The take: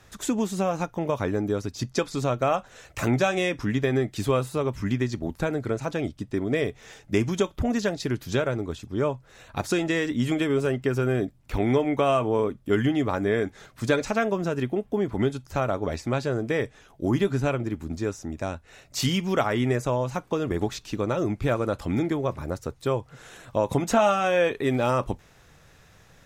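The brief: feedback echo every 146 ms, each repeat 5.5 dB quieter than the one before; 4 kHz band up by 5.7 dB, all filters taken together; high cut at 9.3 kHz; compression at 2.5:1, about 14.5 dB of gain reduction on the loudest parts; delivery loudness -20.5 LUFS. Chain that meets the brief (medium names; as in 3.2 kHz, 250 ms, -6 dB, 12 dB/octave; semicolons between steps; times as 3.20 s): low-pass 9.3 kHz; peaking EQ 4 kHz +7.5 dB; compression 2.5:1, threshold -40 dBFS; feedback delay 146 ms, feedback 53%, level -5.5 dB; trim +16.5 dB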